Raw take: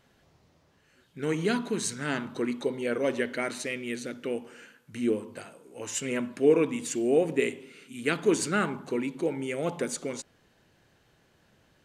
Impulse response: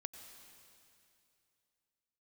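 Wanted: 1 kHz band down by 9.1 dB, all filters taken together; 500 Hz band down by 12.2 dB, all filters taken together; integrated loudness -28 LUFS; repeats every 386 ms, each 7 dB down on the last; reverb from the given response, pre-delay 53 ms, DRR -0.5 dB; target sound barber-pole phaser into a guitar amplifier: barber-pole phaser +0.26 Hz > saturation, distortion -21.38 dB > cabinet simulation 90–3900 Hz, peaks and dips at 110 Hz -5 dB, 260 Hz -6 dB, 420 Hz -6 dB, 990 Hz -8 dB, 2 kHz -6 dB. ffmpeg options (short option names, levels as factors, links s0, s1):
-filter_complex "[0:a]equalizer=f=500:t=o:g=-8.5,equalizer=f=1000:t=o:g=-7.5,aecho=1:1:386|772|1158|1544|1930:0.447|0.201|0.0905|0.0407|0.0183,asplit=2[s0][s1];[1:a]atrim=start_sample=2205,adelay=53[s2];[s1][s2]afir=irnorm=-1:irlink=0,volume=1.58[s3];[s0][s3]amix=inputs=2:normalize=0,asplit=2[s4][s5];[s5]afreqshift=0.26[s6];[s4][s6]amix=inputs=2:normalize=1,asoftclip=threshold=0.1,highpass=90,equalizer=f=110:t=q:w=4:g=-5,equalizer=f=260:t=q:w=4:g=-6,equalizer=f=420:t=q:w=4:g=-6,equalizer=f=990:t=q:w=4:g=-8,equalizer=f=2000:t=q:w=4:g=-6,lowpass=f=3900:w=0.5412,lowpass=f=3900:w=1.3066,volume=2.99"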